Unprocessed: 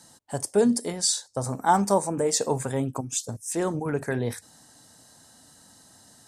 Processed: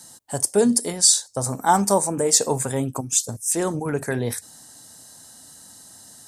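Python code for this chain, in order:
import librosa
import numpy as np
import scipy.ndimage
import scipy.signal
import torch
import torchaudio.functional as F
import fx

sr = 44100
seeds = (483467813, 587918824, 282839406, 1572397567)

y = fx.high_shelf(x, sr, hz=6100.0, db=11.0)
y = y * 10.0 ** (2.5 / 20.0)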